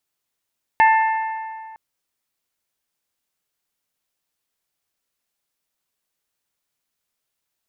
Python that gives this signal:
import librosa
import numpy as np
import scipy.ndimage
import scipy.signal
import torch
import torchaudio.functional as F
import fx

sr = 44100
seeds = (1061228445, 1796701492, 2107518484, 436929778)

y = fx.strike_metal(sr, length_s=0.96, level_db=-10.0, body='bell', hz=886.0, decay_s=2.1, tilt_db=6.0, modes=4)